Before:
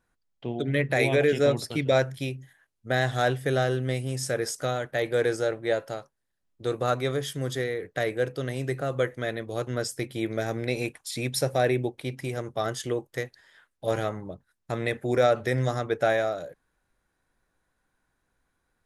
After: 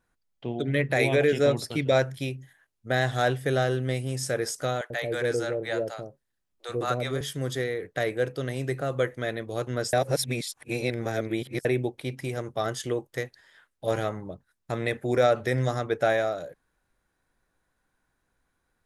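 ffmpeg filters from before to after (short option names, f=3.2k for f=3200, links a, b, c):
-filter_complex "[0:a]asettb=1/sr,asplit=3[a][b][c];[a]atrim=end=4.814[d];[b]atrim=start=4.81:end=7.21,asetpts=PTS-STARTPTS,afade=t=in:d=0.004:c=qsin,afade=t=out:st=2.396:d=0.004:c=qsin,acrossover=split=600[e][f];[e]adelay=90[g];[g][f]amix=inputs=2:normalize=0,atrim=end_sample=105840[h];[c]atrim=start=7.206[i];[d][h]acrossfade=d=0.004:c1=hsin:c2=qsin[j];[j][i]acrossfade=d=0.004:c1=qsin:c2=hsin,asplit=3[k][l][m];[k]atrim=end=9.932[n];[l]atrim=start=9.928:end=11.652,asetpts=PTS-STARTPTS,areverse[o];[m]atrim=start=11.648[p];[n][o]acrossfade=d=0.004:c1=hsin:c2=hsin[q];[q][p]acrossfade=d=0.004:c1=hsin:c2=hsin"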